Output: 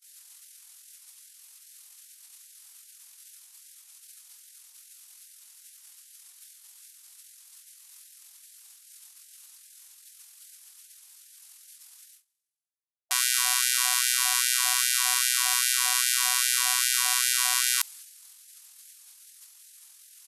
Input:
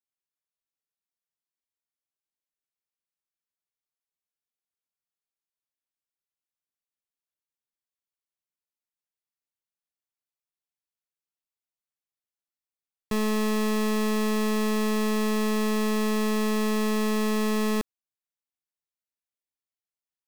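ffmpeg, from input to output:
ffmpeg -i in.wav -af "asetrate=25476,aresample=44100,atempo=1.73107,areverse,acompressor=mode=upward:threshold=-39dB:ratio=2.5,areverse,crystalizer=i=7.5:c=0,agate=range=-28dB:threshold=-45dB:ratio=16:detection=peak,afftfilt=real='re*gte(b*sr/1024,680*pow(1500/680,0.5+0.5*sin(2*PI*2.5*pts/sr)))':imag='im*gte(b*sr/1024,680*pow(1500/680,0.5+0.5*sin(2*PI*2.5*pts/sr)))':win_size=1024:overlap=0.75" out.wav

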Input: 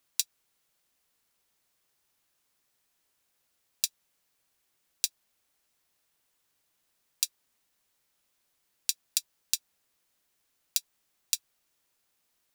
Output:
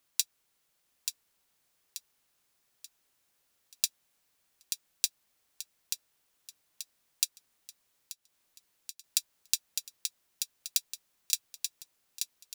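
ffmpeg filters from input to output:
ffmpeg -i in.wav -filter_complex "[0:a]aecho=1:1:883|1766|2649|3532|4415:0.501|0.205|0.0842|0.0345|0.0142,asettb=1/sr,asplit=3[link_01][link_02][link_03];[link_01]atrim=end=7.244[link_04];[link_02]atrim=start=7.24:end=9.04,asetpts=PTS-STARTPTS,afade=type=in:duration=0.004:curve=qsin,afade=type=out:start_time=1.796:duration=0.004:curve=qsin,acompressor=threshold=-40dB:ratio=6[link_05];[link_03]atrim=start=9.036[link_06];[link_04][link_05]acrossfade=duration=0.004:curve1=hsin:curve2=qsin[link_07];[link_07][link_06]acrossfade=duration=0.004:curve1=qsin:curve2=hsin" out.wav

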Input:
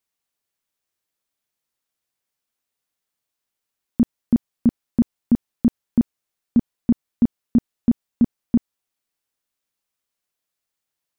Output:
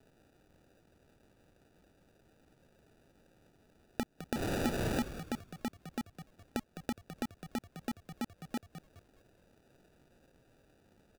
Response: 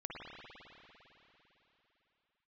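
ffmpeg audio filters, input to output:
-filter_complex "[0:a]asettb=1/sr,asplit=3[link_01][link_02][link_03];[link_01]atrim=end=4.344[link_04];[link_02]atrim=start=4.34:end=5.01,asetpts=PTS-STARTPTS,afade=type=in:duration=0.004:curve=qsin,afade=type=out:start_time=0.666:duration=0.004:curve=qsin,aeval=exprs='val(0)+0.5*0.015*sgn(val(0))':channel_layout=same[link_05];[link_03]atrim=start=5.006[link_06];[link_04][link_05]acrossfade=duration=0.004:curve1=hsin:curve2=qsin[link_07];[link_07][link_06]acrossfade=duration=0.004:curve1=qsin:curve2=hsin,highpass=1000,acompressor=threshold=-50dB:ratio=3,alimiter=level_in=11.5dB:limit=-24dB:level=0:latency=1:release=99,volume=-11.5dB,acrusher=samples=41:mix=1:aa=0.000001,asplit=5[link_08][link_09][link_10][link_11][link_12];[link_09]adelay=208,afreqshift=-72,volume=-11dB[link_13];[link_10]adelay=416,afreqshift=-144,volume=-20.6dB[link_14];[link_11]adelay=624,afreqshift=-216,volume=-30.3dB[link_15];[link_12]adelay=832,afreqshift=-288,volume=-39.9dB[link_16];[link_08][link_13][link_14][link_15][link_16]amix=inputs=5:normalize=0,volume=16.5dB"

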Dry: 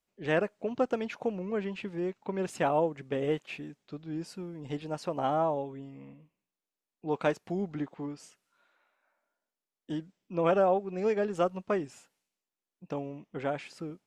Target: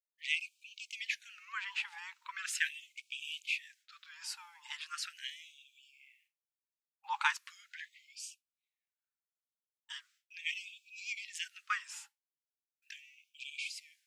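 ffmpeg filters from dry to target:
ffmpeg -i in.wav -af "agate=range=-33dB:threshold=-54dB:ratio=3:detection=peak,lowshelf=frequency=780:width_type=q:width=3:gain=7.5,afftfilt=real='re*gte(b*sr/1024,790*pow(2300/790,0.5+0.5*sin(2*PI*0.39*pts/sr)))':imag='im*gte(b*sr/1024,790*pow(2300/790,0.5+0.5*sin(2*PI*0.39*pts/sr)))':win_size=1024:overlap=0.75,volume=8dB" out.wav

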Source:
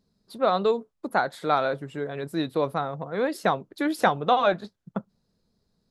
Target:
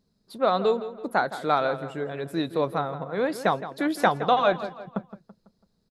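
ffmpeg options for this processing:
ffmpeg -i in.wav -filter_complex "[0:a]asplit=2[link_01][link_02];[link_02]adelay=166,lowpass=frequency=3800:poles=1,volume=-13dB,asplit=2[link_03][link_04];[link_04]adelay=166,lowpass=frequency=3800:poles=1,volume=0.44,asplit=2[link_05][link_06];[link_06]adelay=166,lowpass=frequency=3800:poles=1,volume=0.44,asplit=2[link_07][link_08];[link_08]adelay=166,lowpass=frequency=3800:poles=1,volume=0.44[link_09];[link_01][link_03][link_05][link_07][link_09]amix=inputs=5:normalize=0" out.wav

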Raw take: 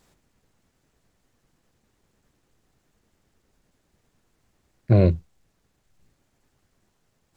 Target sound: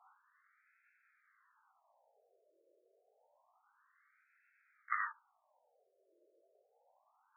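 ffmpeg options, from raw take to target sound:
ffmpeg -i in.wav -af "flanger=delay=17:depth=6.3:speed=0.58,highpass=frequency=230:width_type=q:width=0.5412,highpass=frequency=230:width_type=q:width=1.307,lowpass=frequency=2700:width_type=q:width=0.5176,lowpass=frequency=2700:width_type=q:width=0.7071,lowpass=frequency=2700:width_type=q:width=1.932,afreqshift=-220,afftfilt=real='re*between(b*sr/1024,470*pow(1900/470,0.5+0.5*sin(2*PI*0.28*pts/sr))/1.41,470*pow(1900/470,0.5+0.5*sin(2*PI*0.28*pts/sr))*1.41)':imag='im*between(b*sr/1024,470*pow(1900/470,0.5+0.5*sin(2*PI*0.28*pts/sr))/1.41,470*pow(1900/470,0.5+0.5*sin(2*PI*0.28*pts/sr))*1.41)':win_size=1024:overlap=0.75,volume=11dB" out.wav

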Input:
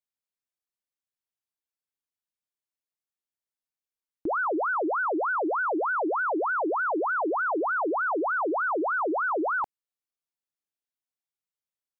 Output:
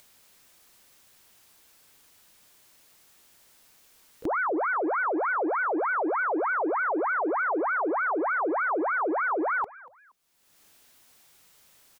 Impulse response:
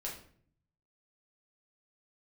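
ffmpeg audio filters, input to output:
-filter_complex "[0:a]acompressor=mode=upward:threshold=-33dB:ratio=2.5,asplit=2[link_01][link_02];[link_02]asetrate=66075,aresample=44100,atempo=0.66742,volume=-16dB[link_03];[link_01][link_03]amix=inputs=2:normalize=0,asplit=3[link_04][link_05][link_06];[link_05]adelay=236,afreqshift=90,volume=-21dB[link_07];[link_06]adelay=472,afreqshift=180,volume=-30.9dB[link_08];[link_04][link_07][link_08]amix=inputs=3:normalize=0"

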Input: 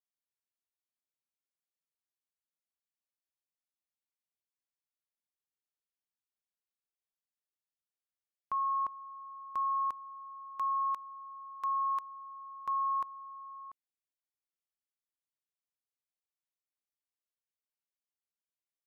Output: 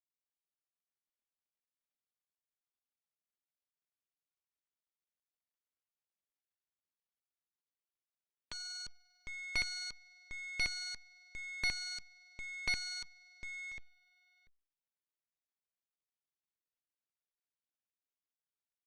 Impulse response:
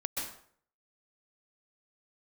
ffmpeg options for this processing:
-af "equalizer=frequency=125:width_type=o:width=1:gain=9,equalizer=frequency=250:width_type=o:width=1:gain=-6,equalizer=frequency=1000:width_type=o:width=1:gain=-5,aecho=1:1:754:0.562,aresample=8000,aeval=exprs='abs(val(0))':channel_layout=same,aresample=44100,aeval=exprs='0.0531*(cos(1*acos(clip(val(0)/0.0531,-1,1)))-cos(1*PI/2))+0.00106*(cos(5*acos(clip(val(0)/0.0531,-1,1)))-cos(5*PI/2))+0.00422*(cos(7*acos(clip(val(0)/0.0531,-1,1)))-cos(7*PI/2))+0.0119*(cos(8*acos(clip(val(0)/0.0531,-1,1)))-cos(8*PI/2))':channel_layout=same,volume=5dB" -ar 48000 -c:a libopus -b:a 64k

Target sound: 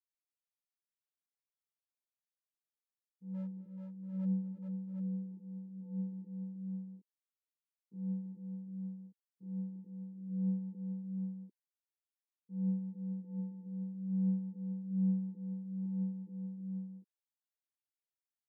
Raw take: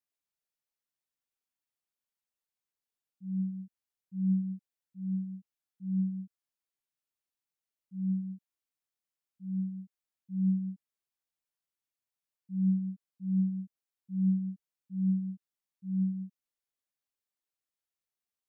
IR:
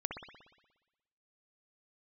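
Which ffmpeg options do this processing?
-filter_complex "[0:a]afwtdn=0.0126,highpass=310,asplit=3[link_01][link_02][link_03];[link_01]afade=type=out:start_time=3.33:duration=0.02[link_04];[link_02]asoftclip=type=hard:threshold=-39.5dB,afade=type=in:start_time=3.33:duration=0.02,afade=type=out:start_time=4.24:duration=0.02[link_05];[link_03]afade=type=in:start_time=4.24:duration=0.02[link_06];[link_04][link_05][link_06]amix=inputs=3:normalize=0,aecho=1:1:237|335|431|450|684|747:0.106|0.15|0.562|0.15|0.158|0.473,volume=2.5dB"

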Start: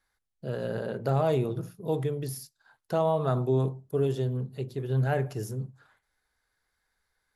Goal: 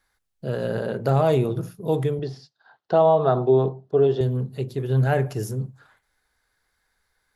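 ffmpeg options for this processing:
ffmpeg -i in.wav -filter_complex "[0:a]asettb=1/sr,asplit=3[link_01][link_02][link_03];[link_01]atrim=end=2.194[link_04];[link_02]atrim=start=2.19:end=4.21,asetpts=PTS-STARTPTS,afade=type=in:duration=0.004:curve=qsin,afade=type=out:start_time=2.016:duration=0.004:curve=qsin,highpass=150,equalizer=frequency=260:width_type=q:width=4:gain=-3,equalizer=frequency=400:width_type=q:width=4:gain=4,equalizer=frequency=730:width_type=q:width=4:gain=7,equalizer=frequency=2300:width_type=q:width=4:gain=-8,lowpass=frequency=4400:width=0.5412,lowpass=frequency=4400:width=1.3066[link_05];[link_03]atrim=start=4.206[link_06];[link_04][link_05]acrossfade=duration=0.004:curve1=hsin:curve2=qsin[link_07];[link_07][link_06]acrossfade=duration=0.004:curve1=qsin:curve2=hsin,volume=6dB" out.wav

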